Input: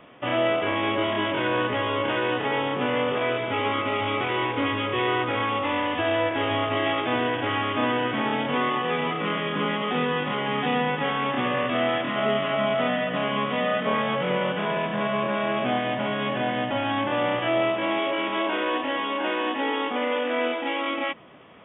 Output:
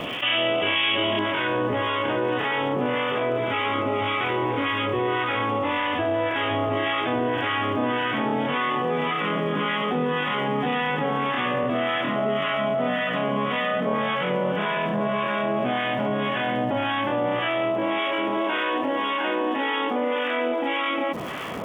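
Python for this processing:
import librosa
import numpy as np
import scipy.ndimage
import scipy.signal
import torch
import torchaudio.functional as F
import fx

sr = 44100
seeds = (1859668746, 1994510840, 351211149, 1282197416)

y = fx.peak_eq(x, sr, hz=3000.0, db=fx.steps((0.0, 14.0), (1.19, -2.5)), octaves=0.98)
y = fx.harmonic_tremolo(y, sr, hz=1.8, depth_pct=70, crossover_hz=1000.0)
y = fx.dmg_crackle(y, sr, seeds[0], per_s=320.0, level_db=-54.0)
y = fx.env_flatten(y, sr, amount_pct=70)
y = F.gain(torch.from_numpy(y), -1.5).numpy()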